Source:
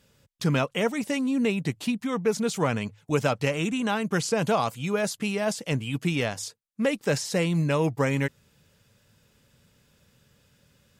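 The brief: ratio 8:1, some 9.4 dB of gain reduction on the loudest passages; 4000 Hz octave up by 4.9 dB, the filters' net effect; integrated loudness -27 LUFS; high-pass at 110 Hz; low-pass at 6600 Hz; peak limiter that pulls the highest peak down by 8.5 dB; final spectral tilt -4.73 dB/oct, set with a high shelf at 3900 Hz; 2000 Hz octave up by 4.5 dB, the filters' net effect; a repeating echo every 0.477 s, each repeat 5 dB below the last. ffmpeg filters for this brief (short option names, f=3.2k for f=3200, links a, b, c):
-af "highpass=110,lowpass=6.6k,equalizer=f=2k:t=o:g=4.5,highshelf=f=3.9k:g=-4,equalizer=f=4k:t=o:g=8,acompressor=threshold=-28dB:ratio=8,alimiter=limit=-23dB:level=0:latency=1,aecho=1:1:477|954|1431|1908|2385|2862|3339:0.562|0.315|0.176|0.0988|0.0553|0.031|0.0173,volume=6dB"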